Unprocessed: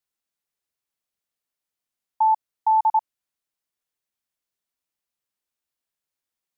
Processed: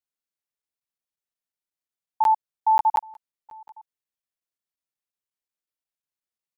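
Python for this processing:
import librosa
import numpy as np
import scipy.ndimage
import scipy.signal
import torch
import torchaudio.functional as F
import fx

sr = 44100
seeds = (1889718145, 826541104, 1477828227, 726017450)

p1 = x + fx.echo_single(x, sr, ms=822, db=-18.0, dry=0)
p2 = fx.buffer_crackle(p1, sr, first_s=0.62, period_s=0.18, block=512, kind='zero')
y = fx.upward_expand(p2, sr, threshold_db=-32.0, expansion=1.5)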